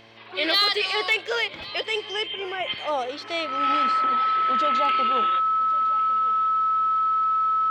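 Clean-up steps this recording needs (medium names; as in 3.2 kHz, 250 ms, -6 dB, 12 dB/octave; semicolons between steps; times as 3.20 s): clip repair -13 dBFS; de-hum 112.9 Hz, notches 6; band-stop 1.3 kHz, Q 30; inverse comb 1102 ms -19.5 dB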